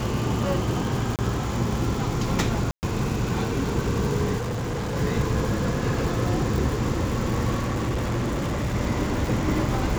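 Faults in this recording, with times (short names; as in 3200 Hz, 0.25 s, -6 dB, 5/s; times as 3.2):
crackle 240/s -29 dBFS
1.16–1.19 gap 28 ms
2.71–2.83 gap 0.119 s
4.37–4.97 clipped -25 dBFS
7.59–8.76 clipped -22 dBFS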